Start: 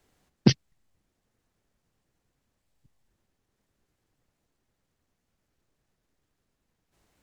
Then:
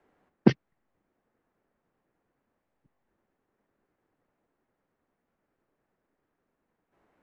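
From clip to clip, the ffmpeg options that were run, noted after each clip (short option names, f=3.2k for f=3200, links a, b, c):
-filter_complex "[0:a]acrossover=split=200 2100:gain=0.2 1 0.0708[a][b][c];[a][b][c]amix=inputs=3:normalize=0,volume=4dB"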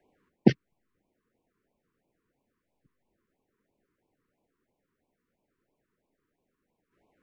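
-af "afftfilt=real='re*(1-between(b*sr/1024,650*pow(1600/650,0.5+0.5*sin(2*PI*3*pts/sr))/1.41,650*pow(1600/650,0.5+0.5*sin(2*PI*3*pts/sr))*1.41))':imag='im*(1-between(b*sr/1024,650*pow(1600/650,0.5+0.5*sin(2*PI*3*pts/sr))/1.41,650*pow(1600/650,0.5+0.5*sin(2*PI*3*pts/sr))*1.41))':win_size=1024:overlap=0.75"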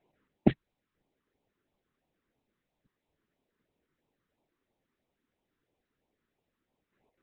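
-af "volume=-4dB" -ar 48000 -c:a libopus -b:a 6k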